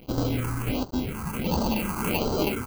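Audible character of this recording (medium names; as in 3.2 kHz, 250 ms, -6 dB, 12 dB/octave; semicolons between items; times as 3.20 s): aliases and images of a low sample rate 1.8 kHz, jitter 0%; tremolo saw down 1.5 Hz, depth 35%; a quantiser's noise floor 8-bit, dither none; phasing stages 4, 1.4 Hz, lowest notch 550–2300 Hz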